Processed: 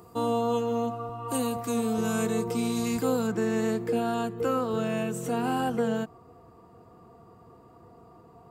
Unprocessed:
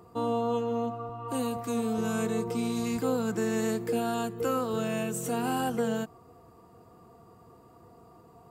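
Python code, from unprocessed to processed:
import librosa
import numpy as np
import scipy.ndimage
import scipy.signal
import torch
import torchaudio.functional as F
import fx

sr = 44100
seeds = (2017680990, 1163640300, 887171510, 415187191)

y = fx.high_shelf(x, sr, hz=5000.0, db=fx.steps((0.0, 9.0), (1.36, 3.5), (3.26, -9.0)))
y = y * librosa.db_to_amplitude(2.0)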